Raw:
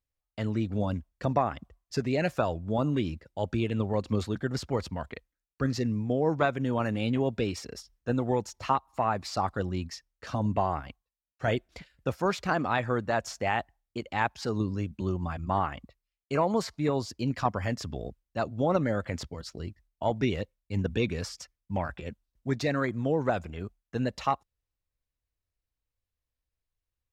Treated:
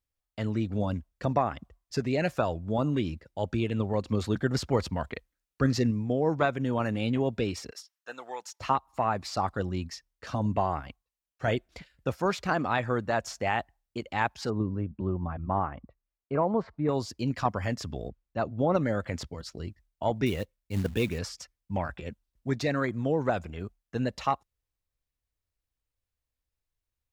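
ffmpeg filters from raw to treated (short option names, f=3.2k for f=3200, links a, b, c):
-filter_complex "[0:a]asettb=1/sr,asplit=3[a][b][c];[a]atrim=end=7.714[d];[b]atrim=start=7.71:end=8.6,asetpts=PTS-STARTPTS,afade=t=in:d=0.004:c=qsin,afade=t=out:st=0.886:d=0.004:c=qsin,highpass=1k[e];[c]atrim=start=8.596[f];[d][e]acrossfade=d=0.004:c1=hsin:c2=qsin[g];[g][f]acrossfade=d=0.004:c1=qsin:c2=hsin,asettb=1/sr,asplit=3[h][i][j];[h]atrim=end=14.504[k];[i]atrim=start=14.5:end=16.89,asetpts=PTS-STARTPTS,afade=t=in:d=0.004:c=qsin,afade=t=out:st=2.386:d=0.004:c=qsin,lowpass=1.3k[l];[j]atrim=start=16.886[m];[k][l]acrossfade=d=0.004:c1=hsin:c2=qsin[n];[n][m]acrossfade=d=0.004:c1=qsin:c2=hsin,asplit=3[o][p][q];[o]afade=t=out:st=18.08:d=0.02[r];[p]aemphasis=mode=reproduction:type=75fm,afade=t=in:st=18.08:d=0.02,afade=t=out:st=18.74:d=0.02[s];[q]afade=t=in:st=18.74:d=0.02[t];[r][s][t]amix=inputs=3:normalize=0,asettb=1/sr,asplit=3[u][v][w];[u]atrim=end=20.264[x];[v]atrim=start=20.26:end=21.19,asetpts=PTS-STARTPTS,afade=t=in:d=0.004:c=qsin,afade=t=out:st=0.926:d=0.004:c=qsin,acrusher=bits=5:mode=log:mix=0:aa=0.000001[y];[w]atrim=start=21.186[z];[x][y]acrossfade=d=0.004:c1=hsin:c2=qsin[aa];[aa][z]acrossfade=d=0.004:c1=qsin:c2=hsin,asplit=3[ab][ac][ad];[ab]atrim=end=4.242[ae];[ac]atrim=start=4.238:end=5.912,asetpts=PTS-STARTPTS,volume=3.5dB[af];[ad]atrim=start=5.908[ag];[ae][af]acrossfade=d=0.004:c1=hsin:c2=hsin[ah];[ah][ag]acrossfade=d=0.004:c1=hsin:c2=hsin"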